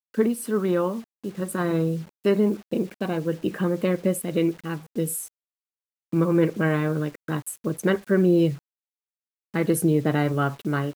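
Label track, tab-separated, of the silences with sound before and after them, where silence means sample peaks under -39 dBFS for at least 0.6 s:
5.270000	6.130000	silence
8.580000	9.540000	silence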